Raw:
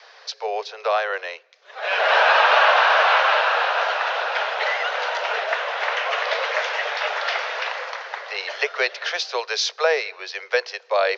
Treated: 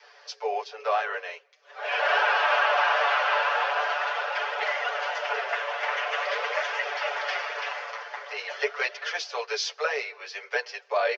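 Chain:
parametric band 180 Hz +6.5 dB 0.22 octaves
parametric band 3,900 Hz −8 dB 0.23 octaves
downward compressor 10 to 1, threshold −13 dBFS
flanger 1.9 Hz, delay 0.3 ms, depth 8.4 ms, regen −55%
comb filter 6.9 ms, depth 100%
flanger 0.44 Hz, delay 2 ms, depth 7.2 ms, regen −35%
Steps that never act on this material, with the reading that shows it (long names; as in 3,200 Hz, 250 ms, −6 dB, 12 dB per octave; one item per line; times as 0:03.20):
parametric band 180 Hz: nothing at its input below 360 Hz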